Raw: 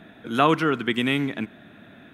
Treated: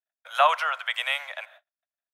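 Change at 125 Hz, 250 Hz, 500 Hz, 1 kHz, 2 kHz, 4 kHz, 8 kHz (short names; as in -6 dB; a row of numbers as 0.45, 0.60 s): under -40 dB, under -40 dB, -5.5 dB, +1.0 dB, 0.0 dB, 0.0 dB, 0.0 dB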